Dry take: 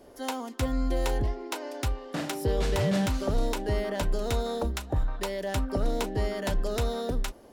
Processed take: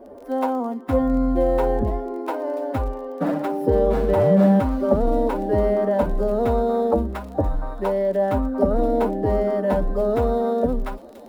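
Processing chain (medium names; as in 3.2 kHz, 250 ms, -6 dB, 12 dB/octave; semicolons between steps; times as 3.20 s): median filter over 5 samples; FFT filter 140 Hz 0 dB, 210 Hz +10 dB, 380 Hz +6 dB, 560 Hz +11 dB, 1.2 kHz +4 dB, 2.9 kHz -10 dB, 6.6 kHz -13 dB, 9.9 kHz -4 dB; time stretch by phase-locked vocoder 1.5×; feedback echo behind a high-pass 985 ms, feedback 46%, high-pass 3.6 kHz, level -10 dB; crackle 20 per s -38 dBFS; trim +2.5 dB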